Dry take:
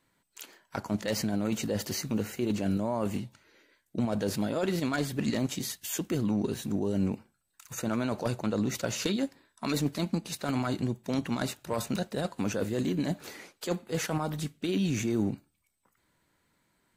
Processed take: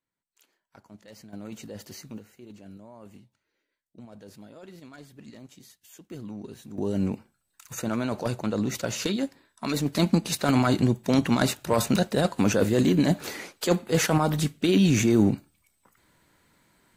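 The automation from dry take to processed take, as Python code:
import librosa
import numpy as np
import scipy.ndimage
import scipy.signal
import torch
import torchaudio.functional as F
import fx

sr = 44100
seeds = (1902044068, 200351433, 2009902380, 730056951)

y = fx.gain(x, sr, db=fx.steps((0.0, -18.0), (1.33, -9.5), (2.19, -17.0), (6.11, -10.0), (6.78, 2.0), (9.95, 8.5)))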